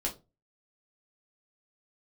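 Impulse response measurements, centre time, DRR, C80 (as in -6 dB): 14 ms, -1.5 dB, 21.0 dB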